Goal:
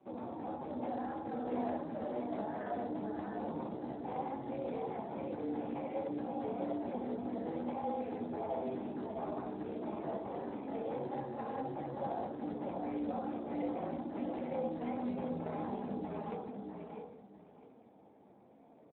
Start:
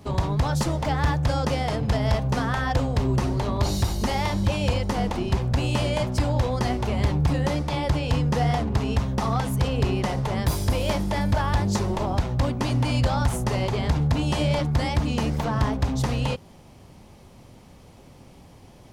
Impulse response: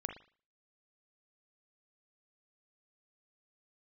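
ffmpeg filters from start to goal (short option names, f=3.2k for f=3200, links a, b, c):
-filter_complex "[0:a]equalizer=f=1.6k:t=o:w=2:g=-6.5,bandreject=f=1.5k:w=14,aecho=1:1:1.3:0.49,alimiter=limit=-18.5dB:level=0:latency=1:release=34,tremolo=f=230:d=0.75,flanger=delay=16:depth=3.9:speed=0.63,aecho=1:1:652|1304|1956:0.631|0.139|0.0305[a];[1:a]atrim=start_sample=2205,asetrate=26901,aresample=44100[b];[a][b]afir=irnorm=-1:irlink=0,highpass=f=270:t=q:w=0.5412,highpass=f=270:t=q:w=1.307,lowpass=f=2.3k:t=q:w=0.5176,lowpass=f=2.3k:t=q:w=0.7071,lowpass=f=2.3k:t=q:w=1.932,afreqshift=-58,volume=-3.5dB" -ar 8000 -c:a libspeex -b:a 8k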